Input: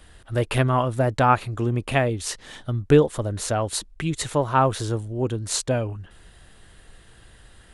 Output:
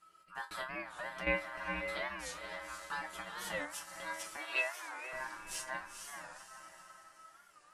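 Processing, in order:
high-shelf EQ 5,700 Hz +4.5 dB
resonators tuned to a chord B3 sus4, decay 0.22 s
feedback delay with all-pass diffusion 488 ms, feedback 43%, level −5 dB
0:00.72–0:01.27: downward compressor, threshold −36 dBFS, peak gain reduction 8 dB
0:03.13–0:03.66: parametric band 2,000 Hz +15 dB 0.65 octaves
0:04.40–0:04.62: gain on a spectral selection 1,200–3,300 Hz +11 dB
ring modulation 1,300 Hz
0:04.37–0:05.13: high-pass filter 400 Hz 24 dB per octave
wow of a warped record 45 rpm, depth 160 cents

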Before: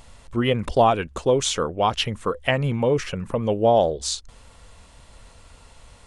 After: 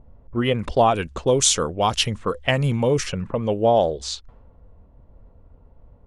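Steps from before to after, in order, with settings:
low-pass that shuts in the quiet parts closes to 410 Hz, open at −19 dBFS
0:00.95–0:03.27: bass and treble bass +3 dB, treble +10 dB

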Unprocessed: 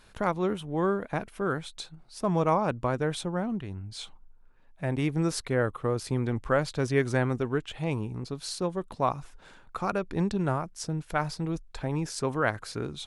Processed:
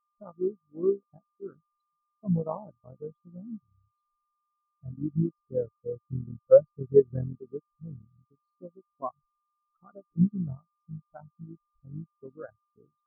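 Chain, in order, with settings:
sub-harmonics by changed cycles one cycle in 3, muted
steady tone 1,200 Hz −42 dBFS
every bin expanded away from the loudest bin 4 to 1
level +4.5 dB

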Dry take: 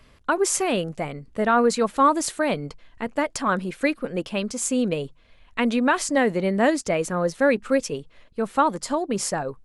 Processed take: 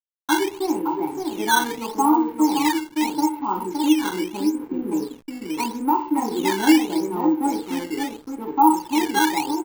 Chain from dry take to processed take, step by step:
formant filter u
comb filter 2.2 ms, depth 53%
in parallel at −1 dB: downward compressor 6 to 1, threshold −41 dBFS, peak gain reduction 18 dB
on the sum: low-pass filter 4,700 Hz 12 dB per octave
high shelf with overshoot 1,500 Hz −12.5 dB, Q 1.5
single-tap delay 567 ms −4.5 dB
convolution reverb RT60 0.50 s, pre-delay 3 ms, DRR −2.5 dB
sample-and-hold swept by an LFO 10×, swing 160% 0.79 Hz
slack as between gear wheels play −37.5 dBFS

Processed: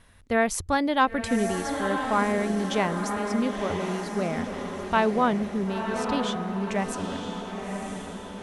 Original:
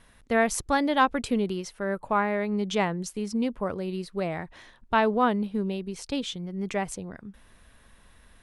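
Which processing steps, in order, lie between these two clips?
parametric band 87 Hz +12 dB 0.39 octaves
feedback delay with all-pass diffusion 996 ms, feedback 54%, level −5.5 dB

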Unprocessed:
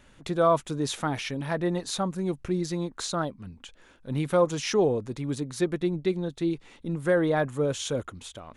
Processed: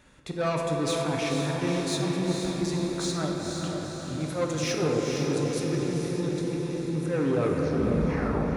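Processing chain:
turntable brake at the end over 1.50 s
volume swells 105 ms
soft clipping −23.5 dBFS, distortion −11 dB
high-pass filter 40 Hz
notch filter 3,000 Hz, Q 11
hum removal 111.5 Hz, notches 27
on a send: feedback delay with all-pass diffusion 483 ms, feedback 59%, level −4 dB
on the sum: rectangular room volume 200 cubic metres, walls hard, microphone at 0.44 metres

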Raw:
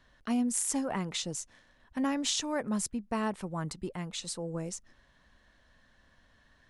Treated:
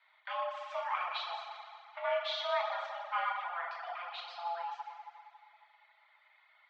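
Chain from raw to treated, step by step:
feedback delay network reverb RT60 2.3 s, low-frequency decay 0.75×, high-frequency decay 0.75×, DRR −5.5 dB
single-sideband voice off tune +350 Hz 370–3,400 Hz
reverb reduction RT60 0.55 s
level −3.5 dB

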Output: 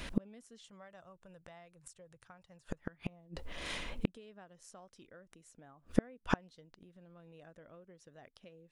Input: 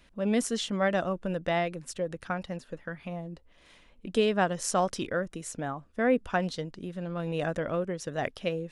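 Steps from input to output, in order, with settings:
0:00.64–0:02.81: octave-band graphic EQ 125/250/1,000/8,000 Hz +10/−11/+4/+9 dB
downward compressor 3 to 1, threshold −32 dBFS, peak gain reduction 9.5 dB
gate with flip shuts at −33 dBFS, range −38 dB
level +16.5 dB

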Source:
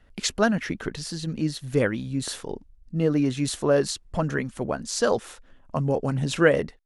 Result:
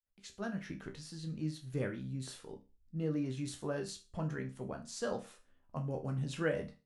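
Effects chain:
fade in at the beginning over 0.76 s
dynamic equaliser 140 Hz, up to +6 dB, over −38 dBFS, Q 0.88
resonators tuned to a chord C2 minor, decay 0.3 s
level −5 dB

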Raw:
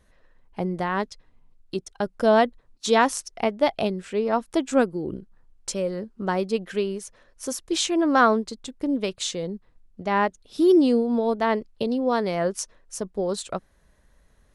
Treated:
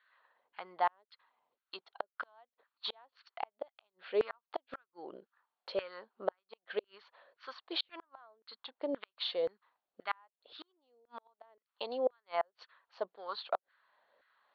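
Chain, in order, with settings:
Chebyshev low-pass with heavy ripple 4,500 Hz, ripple 3 dB
gate with flip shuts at −17 dBFS, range −40 dB
auto-filter high-pass saw down 1.9 Hz 490–1,600 Hz
level −4.5 dB

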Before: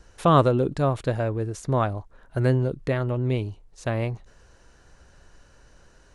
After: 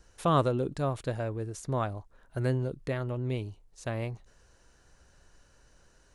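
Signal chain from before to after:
high-shelf EQ 5,400 Hz +7 dB
level −7.5 dB

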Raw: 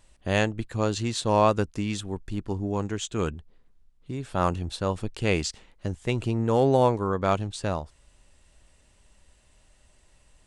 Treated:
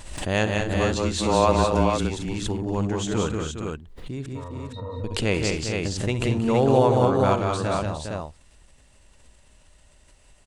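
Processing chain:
0:00.54–0:01.96: frequency shifter −24 Hz
0:04.26–0:05.04: resonances in every octave A#, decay 0.12 s
on a send: multi-tap delay 66/155/180/219/409/464 ms −13/−17.5/−4/−9.5/−9/−4.5 dB
on the sum: background raised ahead of every attack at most 58 dB per second

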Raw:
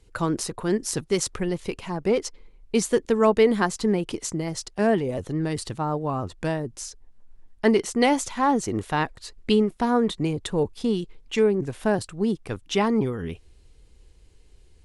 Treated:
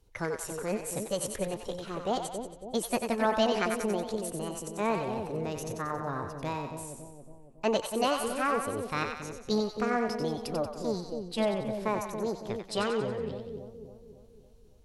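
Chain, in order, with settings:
formants moved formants +6 semitones
echo with a time of its own for lows and highs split 680 Hz, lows 278 ms, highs 92 ms, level −5.5 dB
level −8.5 dB

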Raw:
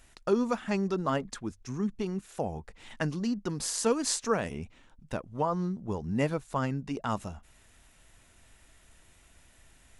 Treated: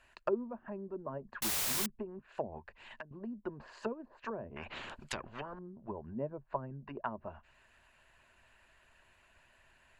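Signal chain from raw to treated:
de-essing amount 75%
treble cut that deepens with the level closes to 390 Hz, closed at −27.5 dBFS
EQ curve with evenly spaced ripples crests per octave 1.4, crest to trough 8 dB
harmonic and percussive parts rebalanced harmonic −6 dB
three-way crossover with the lows and the highs turned down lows −12 dB, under 550 Hz, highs −17 dB, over 3,100 Hz
0:01.42–0:01.86: bit-depth reduction 6 bits, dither triangular
0:02.58–0:03.11: downward compressor 5 to 1, threshold −49 dBFS, peak gain reduction 17.5 dB
0:04.56–0:05.59: every bin compressed towards the loudest bin 4 to 1
level +2.5 dB

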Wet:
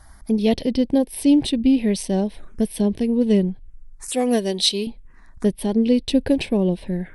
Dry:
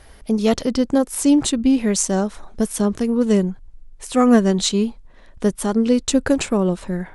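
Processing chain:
0:04.08–0:04.87: bass and treble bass −14 dB, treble +12 dB
phaser swept by the level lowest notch 430 Hz, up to 1,300 Hz, full sweep at −20 dBFS

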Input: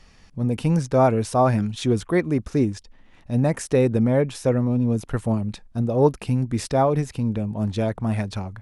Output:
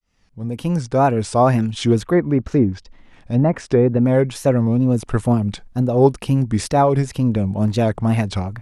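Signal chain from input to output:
fade in at the beginning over 1.39 s
in parallel at +0.5 dB: speech leveller within 3 dB 0.5 s
0:01.96–0:04.06: on the sum: treble cut that deepens with the level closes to 1,400 Hz, closed at −9.5 dBFS
tape wow and flutter 130 cents
level −1.5 dB

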